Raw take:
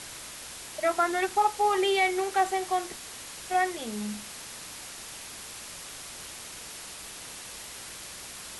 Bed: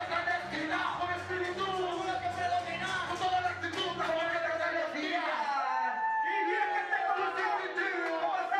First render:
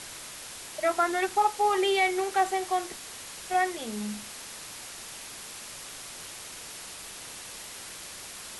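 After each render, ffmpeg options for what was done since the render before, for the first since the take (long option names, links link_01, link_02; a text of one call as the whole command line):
ffmpeg -i in.wav -af "bandreject=frequency=60:width_type=h:width=4,bandreject=frequency=120:width_type=h:width=4,bandreject=frequency=180:width_type=h:width=4,bandreject=frequency=240:width_type=h:width=4,bandreject=frequency=300:width_type=h:width=4" out.wav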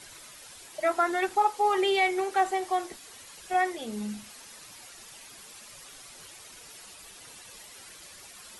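ffmpeg -i in.wav -af "afftdn=noise_reduction=10:noise_floor=-43" out.wav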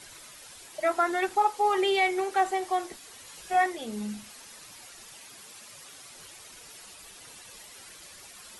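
ffmpeg -i in.wav -filter_complex "[0:a]asettb=1/sr,asplit=3[link_01][link_02][link_03];[link_01]atrim=end=3.234[link_04];[link_02]atrim=start=3.23:end=3.66,asetpts=PTS-STARTPTS,afade=type=in:duration=0.004:curve=qsin,afade=type=out:start_time=0.426:duration=0.004:curve=qsin,asplit=2[link_05][link_06];[link_06]adelay=18,volume=-4.5dB[link_07];[link_05][link_07]amix=inputs=2:normalize=0,atrim=end_sample=18963[link_08];[link_03]atrim=start=3.656[link_09];[link_04][link_08]acrossfade=duration=0.004:curve1=hsin:curve2=qsin[link_10];[link_10][link_09]acrossfade=duration=0.004:curve1=qsin:curve2=hsin,asettb=1/sr,asplit=3[link_11][link_12][link_13];[link_11]atrim=end=5.154[link_14];[link_12]atrim=start=5.15:end=6.14,asetpts=PTS-STARTPTS,afade=type=in:duration=0.004:curve=qsin,afade=type=out:start_time=0.986:duration=0.004:curve=qsin,highpass=72[link_15];[link_13]atrim=start=6.136[link_16];[link_14][link_15]acrossfade=duration=0.004:curve1=hsin:curve2=qsin[link_17];[link_17][link_16]acrossfade=duration=0.004:curve1=qsin:curve2=hsin" out.wav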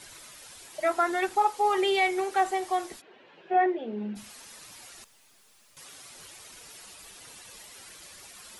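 ffmpeg -i in.wav -filter_complex "[0:a]asplit=3[link_01][link_02][link_03];[link_01]afade=type=out:start_time=3:duration=0.02[link_04];[link_02]highpass=frequency=160:width=0.5412,highpass=frequency=160:width=1.3066,equalizer=frequency=370:width_type=q:width=4:gain=9,equalizer=frequency=600:width_type=q:width=4:gain=3,equalizer=frequency=1200:width_type=q:width=4:gain=-8,equalizer=frequency=2100:width_type=q:width=4:gain=-6,lowpass=frequency=2600:width=0.5412,lowpass=frequency=2600:width=1.3066,afade=type=in:start_time=3:duration=0.02,afade=type=out:start_time=4.15:duration=0.02[link_05];[link_03]afade=type=in:start_time=4.15:duration=0.02[link_06];[link_04][link_05][link_06]amix=inputs=3:normalize=0,asettb=1/sr,asplit=3[link_07][link_08][link_09];[link_07]atrim=end=5.044[link_10];[link_08]atrim=start=5.04:end=5.77,asetpts=PTS-STARTPTS,afade=type=in:duration=0.004:curve=qsin,afade=type=out:start_time=0.726:duration=0.004:curve=qsin,aeval=exprs='(tanh(1000*val(0)+0.7)-tanh(0.7))/1000':channel_layout=same[link_11];[link_09]atrim=start=5.766[link_12];[link_10][link_11]acrossfade=duration=0.004:curve1=hsin:curve2=qsin[link_13];[link_13][link_12]acrossfade=duration=0.004:curve1=qsin:curve2=hsin" out.wav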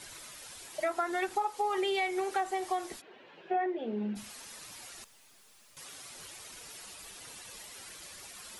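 ffmpeg -i in.wav -af "acompressor=threshold=-28dB:ratio=6" out.wav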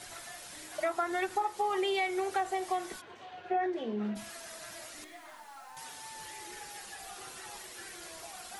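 ffmpeg -i in.wav -i bed.wav -filter_complex "[1:a]volume=-18.5dB[link_01];[0:a][link_01]amix=inputs=2:normalize=0" out.wav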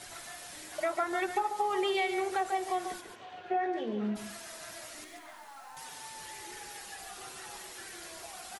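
ffmpeg -i in.wav -af "aecho=1:1:143:0.398" out.wav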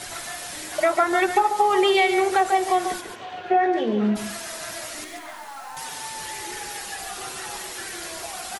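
ffmpeg -i in.wav -af "volume=11.5dB" out.wav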